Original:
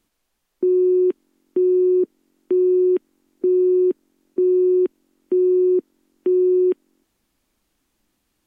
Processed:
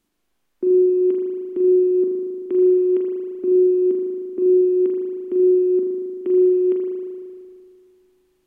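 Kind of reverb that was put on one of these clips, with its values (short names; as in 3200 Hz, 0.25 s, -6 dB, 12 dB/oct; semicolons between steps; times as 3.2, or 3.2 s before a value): spring tank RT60 2.1 s, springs 38 ms, chirp 25 ms, DRR -0.5 dB; gain -3 dB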